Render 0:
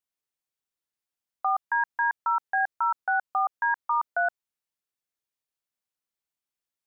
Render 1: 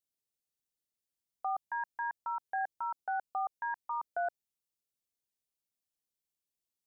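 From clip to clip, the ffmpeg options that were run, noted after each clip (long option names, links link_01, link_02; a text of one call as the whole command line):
ffmpeg -i in.wav -af "equalizer=frequency=1400:width_type=o:width=1.6:gain=-14.5" out.wav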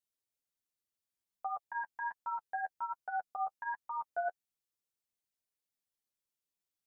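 ffmpeg -i in.wav -af "flanger=delay=8.1:depth=3.9:regen=10:speed=1.3:shape=triangular,volume=1dB" out.wav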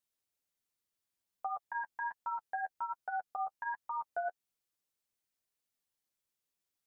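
ffmpeg -i in.wav -af "acompressor=threshold=-38dB:ratio=2,volume=2.5dB" out.wav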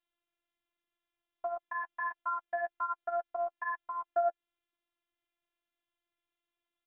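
ffmpeg -i in.wav -af "afftfilt=real='hypot(re,im)*cos(PI*b)':imag='0':win_size=512:overlap=0.75,aresample=8000,aresample=44100,volume=8dB" out.wav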